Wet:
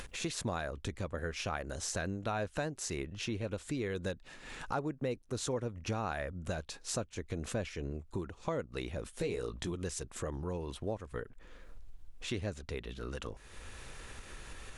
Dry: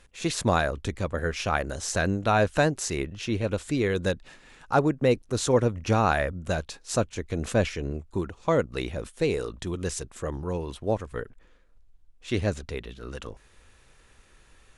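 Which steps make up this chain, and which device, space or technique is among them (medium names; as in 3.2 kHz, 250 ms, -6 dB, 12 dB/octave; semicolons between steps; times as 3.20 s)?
upward and downward compression (upward compressor, threshold -36 dBFS; compression 3:1, threshold -37 dBFS, peak gain reduction 16 dB); 9.11–9.72 s: doubling 17 ms -6 dB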